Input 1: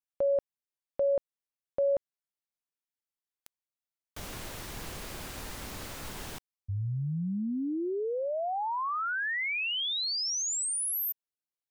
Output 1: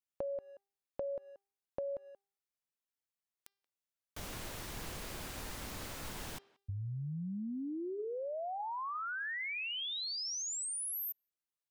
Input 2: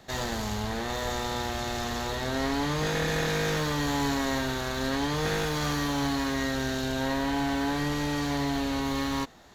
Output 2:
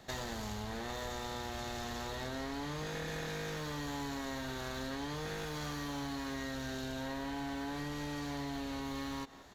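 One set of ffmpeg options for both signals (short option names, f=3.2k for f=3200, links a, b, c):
-filter_complex "[0:a]bandreject=f=397.4:t=h:w=4,bandreject=f=794.8:t=h:w=4,bandreject=f=1.1922k:t=h:w=4,bandreject=f=1.5896k:t=h:w=4,bandreject=f=1.987k:t=h:w=4,bandreject=f=2.3844k:t=h:w=4,bandreject=f=2.7818k:t=h:w=4,bandreject=f=3.1792k:t=h:w=4,bandreject=f=3.5766k:t=h:w=4,bandreject=f=3.974k:t=h:w=4,bandreject=f=4.3714k:t=h:w=4,bandreject=f=4.7688k:t=h:w=4,bandreject=f=5.1662k:t=h:w=4,bandreject=f=5.5636k:t=h:w=4,asplit=2[a][b];[b]adelay=180,highpass=300,lowpass=3.4k,asoftclip=type=hard:threshold=-24.5dB,volume=-23dB[c];[a][c]amix=inputs=2:normalize=0,acompressor=threshold=-35dB:ratio=6:attack=25:release=164:knee=1:detection=rms,volume=-3dB"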